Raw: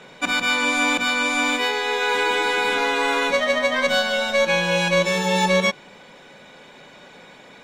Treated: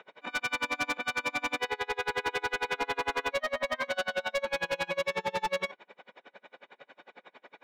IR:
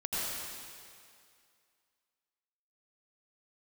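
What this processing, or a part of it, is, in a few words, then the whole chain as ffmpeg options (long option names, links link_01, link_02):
helicopter radio: -af "highpass=380,lowpass=2600,aeval=exprs='val(0)*pow(10,-34*(0.5-0.5*cos(2*PI*11*n/s))/20)':channel_layout=same,asoftclip=type=hard:threshold=-25.5dB"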